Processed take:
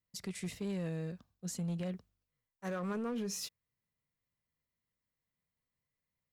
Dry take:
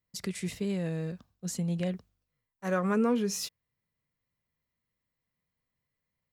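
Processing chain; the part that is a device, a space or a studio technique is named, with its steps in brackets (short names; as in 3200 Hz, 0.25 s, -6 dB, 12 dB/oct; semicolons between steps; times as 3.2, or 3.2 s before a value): limiter into clipper (limiter -25 dBFS, peak gain reduction 7 dB; hard clip -27.5 dBFS, distortion -22 dB); gain -5 dB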